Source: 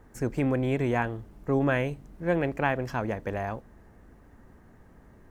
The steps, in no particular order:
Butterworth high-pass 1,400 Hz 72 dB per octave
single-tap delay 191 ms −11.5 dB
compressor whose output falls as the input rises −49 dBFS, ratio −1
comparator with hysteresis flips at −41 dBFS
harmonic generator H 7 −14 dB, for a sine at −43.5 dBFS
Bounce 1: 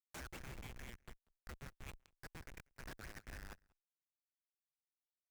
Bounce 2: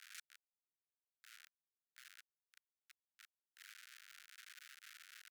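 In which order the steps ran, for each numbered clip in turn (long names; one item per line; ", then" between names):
Butterworth high-pass, then compressor whose output falls as the input rises, then comparator with hysteresis, then single-tap delay, then harmonic generator
single-tap delay, then compressor whose output falls as the input rises, then comparator with hysteresis, then harmonic generator, then Butterworth high-pass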